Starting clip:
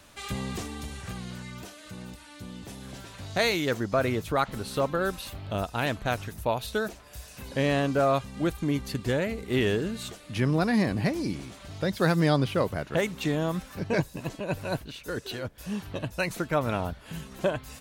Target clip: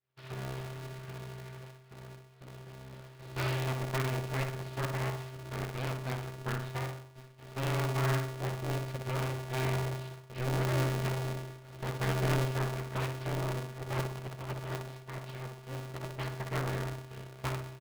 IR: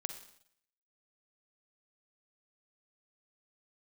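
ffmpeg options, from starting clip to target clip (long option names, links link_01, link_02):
-filter_complex "[0:a]bandreject=frequency=85.05:width_type=h:width=4,bandreject=frequency=170.1:width_type=h:width=4,bandreject=frequency=255.15:width_type=h:width=4,aresample=11025,aeval=exprs='abs(val(0))':channel_layout=same,aresample=44100,agate=range=-33dB:threshold=-41dB:ratio=3:detection=peak,bass=frequency=250:gain=-3,treble=frequency=4000:gain=-12,bandreject=frequency=890:width=12,asplit=2[link_01][link_02];[link_02]adelay=61,lowpass=frequency=2000:poles=1,volume=-5dB,asplit=2[link_03][link_04];[link_04]adelay=61,lowpass=frequency=2000:poles=1,volume=0.52,asplit=2[link_05][link_06];[link_06]adelay=61,lowpass=frequency=2000:poles=1,volume=0.52,asplit=2[link_07][link_08];[link_08]adelay=61,lowpass=frequency=2000:poles=1,volume=0.52,asplit=2[link_09][link_10];[link_10]adelay=61,lowpass=frequency=2000:poles=1,volume=0.52,asplit=2[link_11][link_12];[link_12]adelay=61,lowpass=frequency=2000:poles=1,volume=0.52,asplit=2[link_13][link_14];[link_14]adelay=61,lowpass=frequency=2000:poles=1,volume=0.52[link_15];[link_03][link_05][link_07][link_09][link_11][link_13][link_15]amix=inputs=7:normalize=0[link_16];[link_01][link_16]amix=inputs=2:normalize=0,aeval=exprs='val(0)*sgn(sin(2*PI*130*n/s))':channel_layout=same,volume=-8dB"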